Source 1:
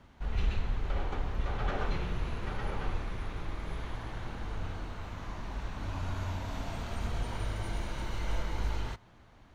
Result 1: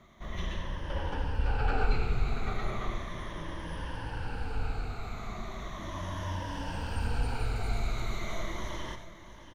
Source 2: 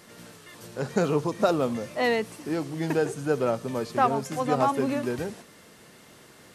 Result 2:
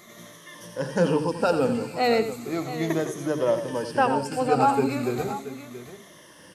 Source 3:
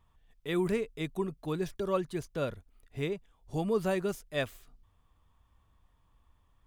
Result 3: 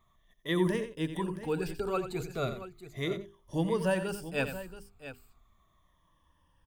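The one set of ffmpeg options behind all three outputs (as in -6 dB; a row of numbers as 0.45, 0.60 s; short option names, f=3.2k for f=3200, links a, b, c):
-af "afftfilt=real='re*pow(10,13/40*sin(2*PI*(1.2*log(max(b,1)*sr/1024/100)/log(2)-(-0.36)*(pts-256)/sr)))':imag='im*pow(10,13/40*sin(2*PI*(1.2*log(max(b,1)*sr/1024/100)/log(2)-(-0.36)*(pts-256)/sr)))':win_size=1024:overlap=0.75,bandreject=f=50:t=h:w=6,bandreject=f=100:t=h:w=6,bandreject=f=150:t=h:w=6,bandreject=f=200:t=h:w=6,bandreject=f=250:t=h:w=6,bandreject=f=300:t=h:w=6,bandreject=f=350:t=h:w=6,bandreject=f=400:t=h:w=6,aecho=1:1:88|678:0.299|0.224"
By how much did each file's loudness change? +1.5, +2.0, +0.5 LU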